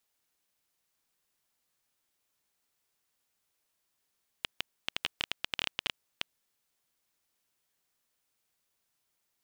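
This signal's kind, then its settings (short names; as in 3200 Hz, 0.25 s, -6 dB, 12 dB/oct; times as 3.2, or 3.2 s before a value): random clicks 9.6/s -12 dBFS 2.12 s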